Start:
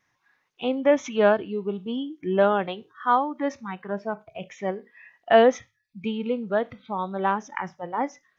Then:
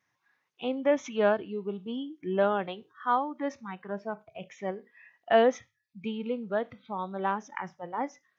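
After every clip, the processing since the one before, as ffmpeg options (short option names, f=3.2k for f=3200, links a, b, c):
-af "highpass=74,volume=-5.5dB"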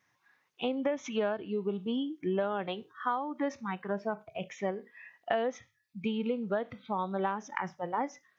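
-af "acompressor=threshold=-31dB:ratio=12,volume=4dB"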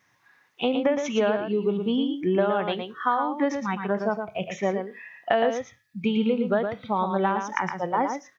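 -af "aecho=1:1:115:0.473,volume=7.5dB"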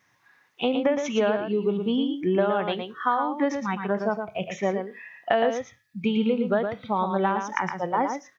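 -af anull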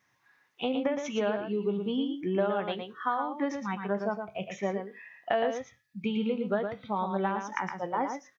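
-filter_complex "[0:a]asplit=2[a][b];[b]adelay=15,volume=-12dB[c];[a][c]amix=inputs=2:normalize=0,volume=-6dB"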